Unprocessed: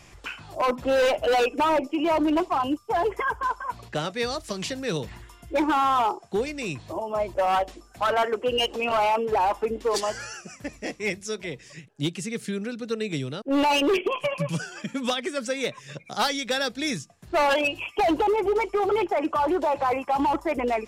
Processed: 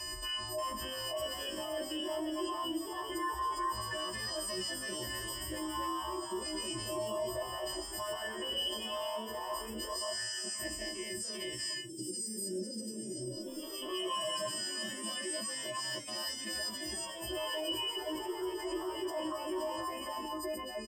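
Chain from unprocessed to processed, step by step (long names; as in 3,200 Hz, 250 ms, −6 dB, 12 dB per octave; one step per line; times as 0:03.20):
every partial snapped to a pitch grid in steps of 3 semitones
compressor whose output falls as the input rises −27 dBFS, ratio −1
mains-hum notches 50/100/150/200/250/300 Hz
comb filter 3 ms, depth 70%
brickwall limiter −30 dBFS, peak gain reduction 18 dB
gain on a spectral selection 0:11.90–0:13.82, 610–4,800 Hz −22 dB
delay with pitch and tempo change per echo 583 ms, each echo +1 semitone, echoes 3, each echo −6 dB
EQ curve with evenly spaced ripples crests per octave 1.3, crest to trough 16 dB
level −5 dB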